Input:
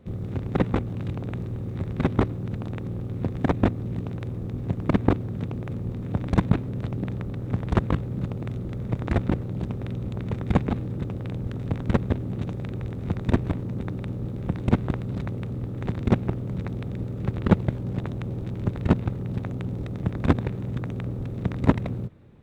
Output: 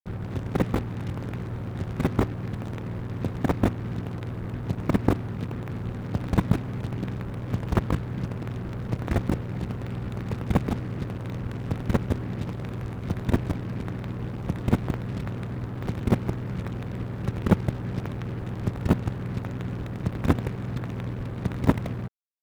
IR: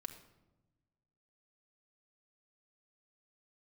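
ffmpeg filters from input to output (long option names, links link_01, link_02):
-af "acrusher=bits=5:mix=0:aa=0.5,volume=-1.5dB"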